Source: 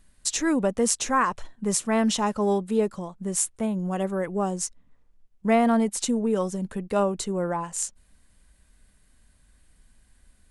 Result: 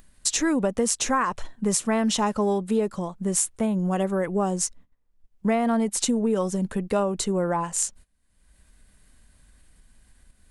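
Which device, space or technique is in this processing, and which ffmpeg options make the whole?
upward and downward compression: -af "agate=range=-19dB:threshold=-48dB:ratio=16:detection=peak,acompressor=mode=upward:threshold=-43dB:ratio=2.5,acompressor=threshold=-24dB:ratio=5,volume=4.5dB"

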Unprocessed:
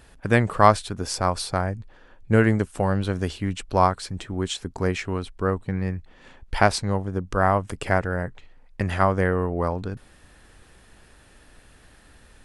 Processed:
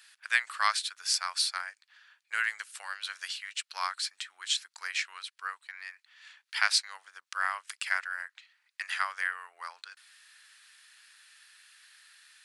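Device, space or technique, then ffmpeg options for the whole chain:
headphones lying on a table: -af "highpass=frequency=1500:width=0.5412,highpass=frequency=1500:width=1.3066,equalizer=frequency=4400:width_type=o:width=0.53:gain=5"

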